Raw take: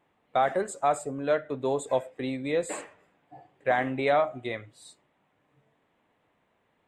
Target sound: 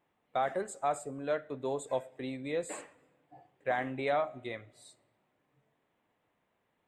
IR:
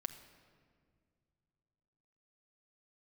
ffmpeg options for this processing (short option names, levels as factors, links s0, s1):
-filter_complex "[0:a]asplit=2[s0][s1];[1:a]atrim=start_sample=2205,highshelf=f=5200:g=11.5[s2];[s1][s2]afir=irnorm=-1:irlink=0,volume=0.2[s3];[s0][s3]amix=inputs=2:normalize=0,volume=0.398"